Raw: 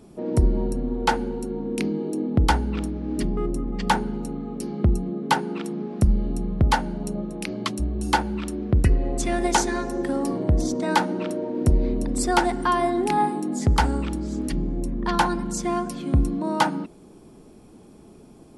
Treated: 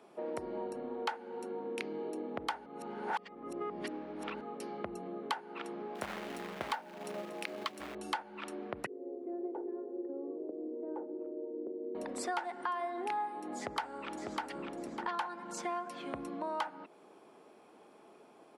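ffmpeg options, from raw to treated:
ffmpeg -i in.wav -filter_complex "[0:a]asettb=1/sr,asplit=3[link_01][link_02][link_03];[link_01]atrim=end=5.954[link_04];[link_02]atrim=start=5.95:end=7.95,asetpts=PTS-STARTPTS,afade=type=in:duration=0.004:curve=qsin,afade=type=out:start_time=1.996:duration=0.004:curve=qsin,acrusher=bits=4:mode=log:mix=0:aa=0.000001[link_05];[link_03]atrim=start=7.946[link_06];[link_04][link_05]acrossfade=duration=0.004:curve1=hsin:curve2=qsin[link_07];[link_07][link_06]acrossfade=duration=0.004:curve1=qsin:curve2=hsin,asettb=1/sr,asplit=3[link_08][link_09][link_10];[link_08]atrim=end=8.864[link_11];[link_09]atrim=start=8.86:end=11.95,asetpts=PTS-STARTPTS,afade=type=in:duration=0.004:curve=qsin,afade=type=out:start_time=3.086:duration=0.004:curve=qsin,asuperpass=centerf=360:order=4:qfactor=2.1[link_12];[link_10]atrim=start=11.946[link_13];[link_11][link_12]acrossfade=duration=0.004:curve1=hsin:curve2=qsin[link_14];[link_14][link_13]acrossfade=duration=0.004:curve1=qsin:curve2=hsin,asplit=2[link_15][link_16];[link_16]afade=type=in:start_time=13.57:duration=0.01,afade=type=out:start_time=14.4:duration=0.01,aecho=0:1:600|1200|1800:0.446684|0.111671|0.0279177[link_17];[link_15][link_17]amix=inputs=2:normalize=0,asplit=3[link_18][link_19][link_20];[link_18]atrim=end=2.662[link_21];[link_19]atrim=start=2.658:end=4.412,asetpts=PTS-STARTPTS,areverse[link_22];[link_20]atrim=start=4.408[link_23];[link_21][link_22]acrossfade=duration=0.004:curve1=hsin:curve2=hsin[link_24];[link_24][link_23]acrossfade=duration=0.004:curve1=hsin:curve2=hsin,highpass=190,acrossover=split=490 3200:gain=0.112 1 0.2[link_25][link_26][link_27];[link_25][link_26][link_27]amix=inputs=3:normalize=0,acompressor=threshold=-35dB:ratio=5" out.wav

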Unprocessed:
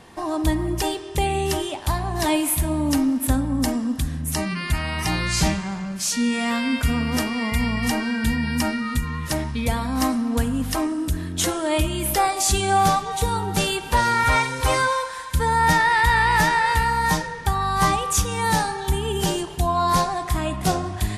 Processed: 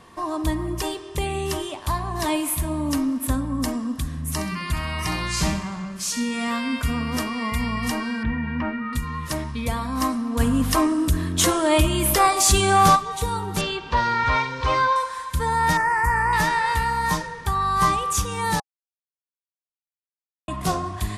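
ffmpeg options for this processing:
ffmpeg -i in.wav -filter_complex "[0:a]asettb=1/sr,asplit=3[link_01][link_02][link_03];[link_01]atrim=end=4.114[link_04];[link_02]atrim=start=4.11:end=6.48,asetpts=PTS-STARTPTS,afade=type=in:duration=0.004:curve=qsin,afade=type=out:start_time=2.366:duration=0.004:curve=qsin,aecho=1:1:65|130|195|260|325:0.299|0.128|0.0552|0.0237|0.0102,atrim=end_sample=104517[link_05];[link_03]atrim=start=6.476[link_06];[link_04][link_05]acrossfade=duration=0.004:curve1=hsin:curve2=qsin[link_07];[link_07][link_06]acrossfade=duration=0.004:curve1=qsin:curve2=hsin,asettb=1/sr,asplit=3[link_08][link_09][link_10];[link_08]atrim=end=8.234[link_11];[link_09]atrim=start=8.23:end=8.93,asetpts=PTS-STARTPTS,afade=type=in:duration=0.004:curve=qsin,afade=type=out:start_time=0.696:duration=0.004:curve=qsin,lowpass=frequency=2400:width=0.5412,lowpass=frequency=2400:width=1.3066[link_12];[link_10]atrim=start=8.926[link_13];[link_11][link_12]acrossfade=duration=0.004:curve1=hsin:curve2=qsin[link_14];[link_14][link_13]acrossfade=duration=0.004:curve1=qsin:curve2=hsin,asplit=3[link_15][link_16][link_17];[link_15]afade=type=out:start_time=10.39:duration=0.02[link_18];[link_16]acontrast=71,afade=type=in:start_time=10.39:duration=0.02,afade=type=out:start_time=12.95:duration=0.02[link_19];[link_17]afade=type=in:start_time=12.95:duration=0.02[link_20];[link_18][link_19][link_20]amix=inputs=3:normalize=0,asettb=1/sr,asplit=3[link_21][link_22][link_23];[link_21]atrim=end=13.614[link_24];[link_22]atrim=start=13.61:end=14.96,asetpts=PTS-STARTPTS,afade=type=in:duration=0.004:curve=qsin,afade=type=out:start_time=1.346:duration=0.004:curve=qsin,lowpass=frequency=5200:width=0.5412,lowpass=frequency=5200:width=1.3066[link_25];[link_23]atrim=start=14.956[link_26];[link_24][link_25]acrossfade=duration=0.004:curve1=hsin:curve2=qsin[link_27];[link_27][link_26]acrossfade=duration=0.004:curve1=qsin:curve2=hsin,asettb=1/sr,asplit=3[link_28][link_29][link_30];[link_28]atrim=end=15.774[link_31];[link_29]atrim=start=15.77:end=16.33,asetpts=PTS-STARTPTS,afade=type=in:duration=0.004:curve=qsin,afade=type=out:start_time=0.556:duration=0.004:curve=qsin,asuperstop=centerf=3600:order=4:qfactor=0.9[link_32];[link_30]atrim=start=16.326[link_33];[link_31][link_32]acrossfade=duration=0.004:curve1=hsin:curve2=qsin[link_34];[link_34][link_33]acrossfade=duration=0.004:curve1=qsin:curve2=hsin,asplit=3[link_35][link_36][link_37];[link_35]atrim=end=18.6,asetpts=PTS-STARTPTS,afade=type=out:start_time=18.596:duration=0.004:curve=hsin[link_38];[link_36]atrim=start=18.6:end=20.48,asetpts=PTS-STARTPTS,volume=0[link_39];[link_37]atrim=start=20.48,asetpts=PTS-STARTPTS,afade=type=in:duration=0.004:curve=hsin[link_40];[link_38][link_39][link_40]concat=n=3:v=0:a=1,equalizer=frequency=1100:width=7.4:gain=10,bandreject=frequency=810:width=12,volume=-3dB" out.wav

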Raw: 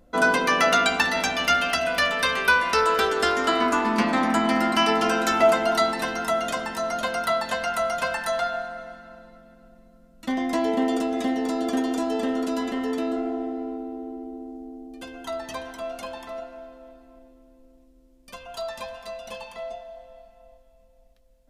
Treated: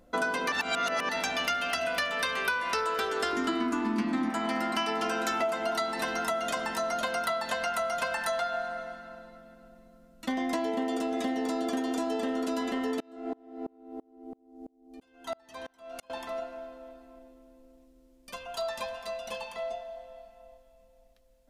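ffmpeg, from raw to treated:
ffmpeg -i in.wav -filter_complex "[0:a]asettb=1/sr,asplit=3[link_01][link_02][link_03];[link_01]atrim=end=3.324[link_04];[link_02]atrim=start=3.32:end=4.3,asetpts=PTS-STARTPTS,afade=type=in:duration=0.004:curve=qsin,afade=type=out:start_time=0.976:duration=0.004:curve=qsin,lowshelf=frequency=390:width_type=q:width=3:gain=6.5[link_05];[link_03]atrim=start=4.296[link_06];[link_04][link_05]acrossfade=duration=0.004:curve1=hsin:curve2=qsin[link_07];[link_07][link_06]acrossfade=duration=0.004:curve1=qsin:curve2=hsin,asettb=1/sr,asplit=3[link_08][link_09][link_10];[link_08]atrim=end=13.004[link_11];[link_09]atrim=start=13:end=16.1,asetpts=PTS-STARTPTS,afade=type=in:duration=0.004:curve=qsin,afade=type=out:start_time=3.096:duration=0.004:curve=qsin,aeval=exprs='val(0)*pow(10,-33*if(lt(mod(-3*n/s,1),2*abs(-3)/1000),1-mod(-3*n/s,1)/(2*abs(-3)/1000),(mod(-3*n/s,1)-2*abs(-3)/1000)/(1-2*abs(-3)/1000))/20)':channel_layout=same[link_12];[link_10]atrim=start=16.096[link_13];[link_11][link_12]acrossfade=duration=0.004:curve1=hsin:curve2=qsin[link_14];[link_14][link_13]acrossfade=duration=0.004:curve1=qsin:curve2=hsin,asplit=3[link_15][link_16][link_17];[link_15]atrim=end=0.522[link_18];[link_16]atrim=start=0.518:end=1.092,asetpts=PTS-STARTPTS,areverse[link_19];[link_17]atrim=start=1.088[link_20];[link_18][link_19]acrossfade=duration=0.004:curve1=hsin:curve2=hsin[link_21];[link_21][link_20]acrossfade=duration=0.004:curve1=hsin:curve2=hsin,lowshelf=frequency=180:gain=-6,acompressor=threshold=-27dB:ratio=6" out.wav

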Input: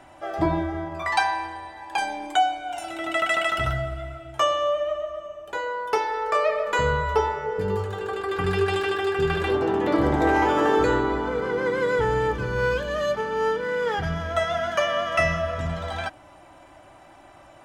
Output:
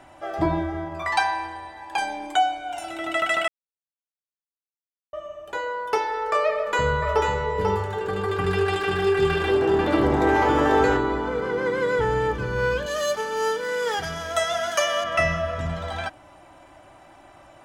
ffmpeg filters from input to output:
ffmpeg -i in.wav -filter_complex "[0:a]asettb=1/sr,asplit=3[link_01][link_02][link_03];[link_01]atrim=end=6.534[link_04];[link_02]atrim=start=6.53:end=10.97,asetpts=PTS-STARTPTS,afade=type=in:duration=0.004:curve=qsin,afade=type=out:start_time=4.436:duration=0.004:curve=qsin,aecho=1:1:491:0.631,atrim=end_sample=195804[link_05];[link_03]atrim=start=10.966[link_06];[link_04][link_05]acrossfade=duration=0.004:curve1=hsin:curve2=qsin[link_07];[link_07][link_06]acrossfade=duration=0.004:curve1=qsin:curve2=hsin,asettb=1/sr,asplit=3[link_08][link_09][link_10];[link_08]atrim=end=12.864[link_11];[link_09]atrim=start=12.86:end=15.04,asetpts=PTS-STARTPTS,afade=type=in:duration=0.004:curve=qsin,afade=type=out:start_time=2.176:duration=0.004:curve=qsin,bass=frequency=250:gain=-10,treble=frequency=4000:gain=14[link_12];[link_10]atrim=start=15.036[link_13];[link_11][link_12]acrossfade=duration=0.004:curve1=hsin:curve2=qsin[link_14];[link_14][link_13]acrossfade=duration=0.004:curve1=qsin:curve2=hsin,asplit=3[link_15][link_16][link_17];[link_15]atrim=end=3.48,asetpts=PTS-STARTPTS,afade=type=out:start_time=3.476:duration=0.004:curve=hsin[link_18];[link_16]atrim=start=3.48:end=5.13,asetpts=PTS-STARTPTS,volume=0[link_19];[link_17]atrim=start=5.13,asetpts=PTS-STARTPTS,afade=type=in:duration=0.004:curve=hsin[link_20];[link_18][link_19][link_20]concat=n=3:v=0:a=1" out.wav

